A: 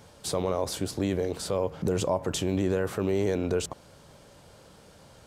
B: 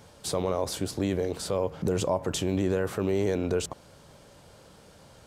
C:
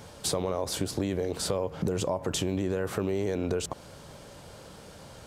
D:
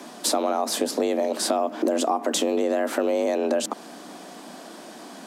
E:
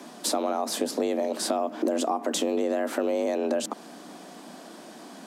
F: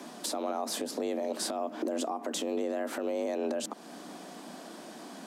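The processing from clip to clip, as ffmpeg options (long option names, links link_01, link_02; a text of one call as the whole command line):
ffmpeg -i in.wav -af anull out.wav
ffmpeg -i in.wav -af "acompressor=threshold=-31dB:ratio=6,volume=5.5dB" out.wav
ffmpeg -i in.wav -af "afreqshift=150,volume=6dB" out.wav
ffmpeg -i in.wav -af "lowshelf=frequency=190:gain=5.5,volume=-4dB" out.wav
ffmpeg -i in.wav -af "alimiter=limit=-22dB:level=0:latency=1:release=234,volume=-1dB" out.wav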